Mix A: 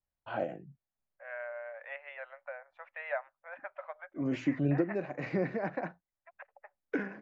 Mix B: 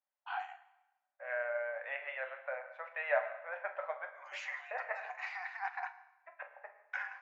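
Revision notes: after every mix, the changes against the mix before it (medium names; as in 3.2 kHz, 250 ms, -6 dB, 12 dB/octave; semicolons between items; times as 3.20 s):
first voice: add brick-wall FIR high-pass 710 Hz; reverb: on, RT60 1.0 s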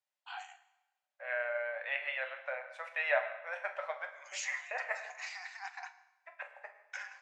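first voice -7.0 dB; master: remove low-pass 1.7 kHz 12 dB/octave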